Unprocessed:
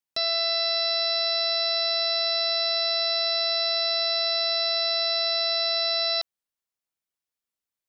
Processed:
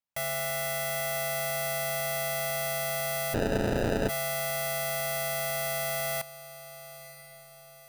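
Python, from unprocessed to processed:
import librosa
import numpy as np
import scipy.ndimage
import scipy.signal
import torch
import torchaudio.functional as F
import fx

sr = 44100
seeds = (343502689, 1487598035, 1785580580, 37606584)

y = fx.tracing_dist(x, sr, depth_ms=0.44)
y = fx.peak_eq(y, sr, hz=350.0, db=-15.0, octaves=0.31)
y = fx.echo_diffused(y, sr, ms=979, feedback_pct=50, wet_db=-16.0)
y = fx.sample_hold(y, sr, seeds[0], rate_hz=1100.0, jitter_pct=0, at=(3.33, 4.08), fade=0.02)
y = fx.high_shelf(y, sr, hz=2900.0, db=-8.0)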